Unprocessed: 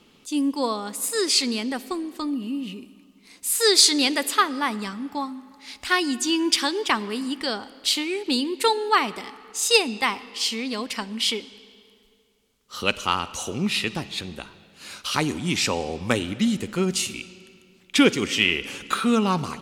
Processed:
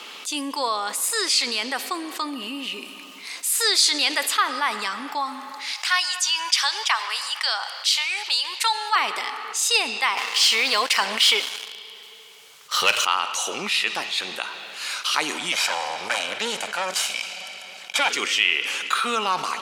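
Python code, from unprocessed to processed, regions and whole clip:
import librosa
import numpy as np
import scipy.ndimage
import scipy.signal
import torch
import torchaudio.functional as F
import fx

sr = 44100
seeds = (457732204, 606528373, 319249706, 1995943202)

y = fx.chain(x, sr, fx.highpass(hz=690.0, slope=24),
    fx.peak_eq(hz=5600.0, db=5.5, octaves=0.6), at=(5.73, 8.96))
y = fx.chain(y, sr, fx.low_shelf_res(hz=180.0, db=7.5, q=3.0),
    fx.leveller(passes=3), at=(10.17, 13.05))
y = fx.chain(y, sr, fx.lower_of_two(delay_ms=1.3),
    fx.lowpass(hz=12000.0, slope=12), at=(15.52, 18.1))
y = scipy.signal.sosfilt(scipy.signal.butter(2, 840.0, 'highpass', fs=sr, output='sos'), y)
y = fx.high_shelf(y, sr, hz=6500.0, db=-5.0)
y = fx.env_flatten(y, sr, amount_pct=50)
y = y * librosa.db_to_amplitude(-2.0)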